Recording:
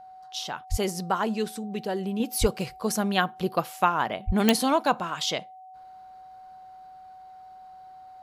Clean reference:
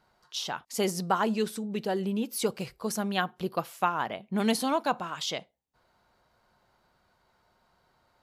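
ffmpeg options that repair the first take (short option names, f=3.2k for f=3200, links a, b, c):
-filter_complex "[0:a]adeclick=t=4,bandreject=f=750:w=30,asplit=3[a][b][c];[a]afade=t=out:st=0.7:d=0.02[d];[b]highpass=f=140:w=0.5412,highpass=f=140:w=1.3066,afade=t=in:st=0.7:d=0.02,afade=t=out:st=0.82:d=0.02[e];[c]afade=t=in:st=0.82:d=0.02[f];[d][e][f]amix=inputs=3:normalize=0,asplit=3[g][h][i];[g]afade=t=out:st=2.4:d=0.02[j];[h]highpass=f=140:w=0.5412,highpass=f=140:w=1.3066,afade=t=in:st=2.4:d=0.02,afade=t=out:st=2.52:d=0.02[k];[i]afade=t=in:st=2.52:d=0.02[l];[j][k][l]amix=inputs=3:normalize=0,asplit=3[m][n][o];[m]afade=t=out:st=4.26:d=0.02[p];[n]highpass=f=140:w=0.5412,highpass=f=140:w=1.3066,afade=t=in:st=4.26:d=0.02,afade=t=out:st=4.38:d=0.02[q];[o]afade=t=in:st=4.38:d=0.02[r];[p][q][r]amix=inputs=3:normalize=0,asetnsamples=n=441:p=0,asendcmd='2.2 volume volume -4.5dB',volume=0dB"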